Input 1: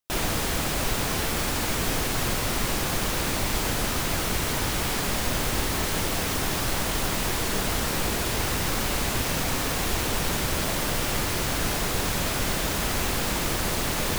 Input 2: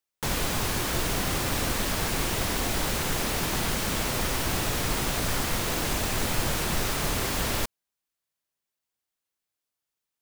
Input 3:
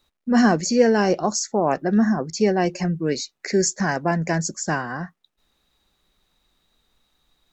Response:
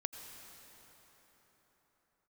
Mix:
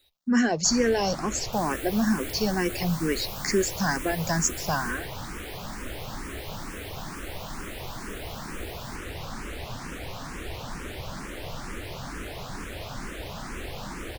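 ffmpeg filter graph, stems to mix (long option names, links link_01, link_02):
-filter_complex "[0:a]lowpass=frequency=3200:poles=1,adelay=550,volume=-6dB[link_01];[1:a]aderivative,adelay=1300,volume=-7.5dB,afade=type=out:start_time=4.84:duration=0.23:silence=0.354813[link_02];[2:a]highshelf=frequency=2300:gain=9.5,acompressor=threshold=-22dB:ratio=1.5,volume=-0.5dB[link_03];[link_01][link_02][link_03]amix=inputs=3:normalize=0,asplit=2[link_04][link_05];[link_05]afreqshift=2.2[link_06];[link_04][link_06]amix=inputs=2:normalize=1"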